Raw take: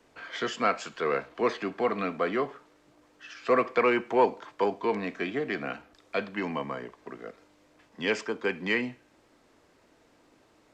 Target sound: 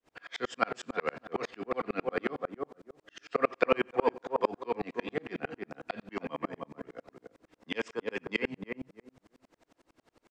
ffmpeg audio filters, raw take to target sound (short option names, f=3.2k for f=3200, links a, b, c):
-filter_complex "[0:a]asetrate=45938,aresample=44100,asplit=2[a][b];[b]adelay=307,lowpass=f=960:p=1,volume=-4dB,asplit=2[c][d];[d]adelay=307,lowpass=f=960:p=1,volume=0.23,asplit=2[e][f];[f]adelay=307,lowpass=f=960:p=1,volume=0.23[g];[a][c][e][g]amix=inputs=4:normalize=0,aeval=exprs='val(0)*pow(10,-39*if(lt(mod(-11*n/s,1),2*abs(-11)/1000),1-mod(-11*n/s,1)/(2*abs(-11)/1000),(mod(-11*n/s,1)-2*abs(-11)/1000)/(1-2*abs(-11)/1000))/20)':c=same,volume=4dB"